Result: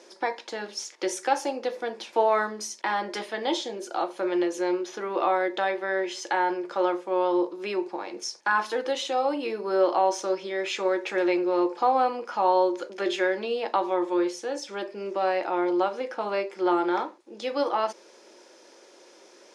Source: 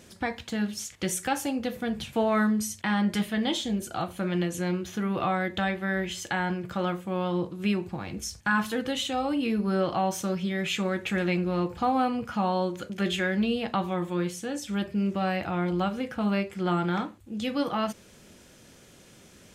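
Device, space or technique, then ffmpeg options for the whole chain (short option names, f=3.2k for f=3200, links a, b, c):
phone speaker on a table: -af "highpass=f=350:w=0.5412,highpass=f=350:w=1.3066,equalizer=f=350:t=q:w=4:g=9,equalizer=f=550:t=q:w=4:g=6,equalizer=f=920:t=q:w=4:g=9,equalizer=f=3k:t=q:w=4:g=-4,equalizer=f=5.2k:t=q:w=4:g=6,equalizer=f=7.9k:t=q:w=4:g=-8,lowpass=f=8.9k:w=0.5412,lowpass=f=8.9k:w=1.3066"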